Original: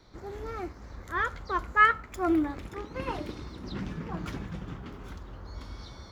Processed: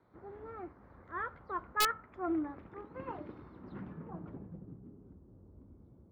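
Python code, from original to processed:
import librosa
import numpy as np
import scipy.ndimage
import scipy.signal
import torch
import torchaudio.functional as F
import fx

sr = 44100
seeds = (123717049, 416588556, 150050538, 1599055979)

y = fx.bandpass_edges(x, sr, low_hz=100.0, high_hz=6100.0)
y = fx.filter_sweep_lowpass(y, sr, from_hz=1400.0, to_hz=330.0, start_s=3.81, end_s=4.8, q=0.93)
y = (np.mod(10.0 ** (12.0 / 20.0) * y + 1.0, 2.0) - 1.0) / 10.0 ** (12.0 / 20.0)
y = F.gain(torch.from_numpy(y), -8.5).numpy()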